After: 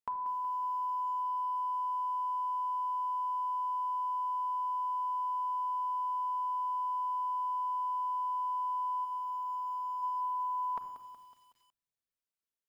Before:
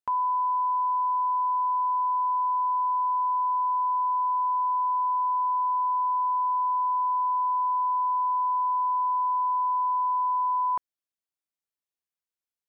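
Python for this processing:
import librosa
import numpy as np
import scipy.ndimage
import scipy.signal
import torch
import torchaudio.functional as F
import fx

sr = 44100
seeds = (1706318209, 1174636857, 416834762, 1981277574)

y = fx.highpass(x, sr, hz=fx.line((9.04, 890.0), (10.02, 1000.0)), slope=6, at=(9.04, 10.02), fade=0.02)
y = fx.room_shoebox(y, sr, seeds[0], volume_m3=3900.0, walls='furnished', distance_m=1.6)
y = fx.echo_crushed(y, sr, ms=185, feedback_pct=55, bits=9, wet_db=-12.0)
y = y * 10.0 ** (-5.0 / 20.0)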